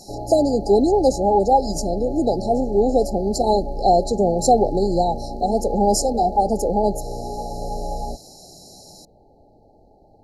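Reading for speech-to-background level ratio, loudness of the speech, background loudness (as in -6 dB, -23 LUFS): 11.5 dB, -19.5 LUFS, -31.0 LUFS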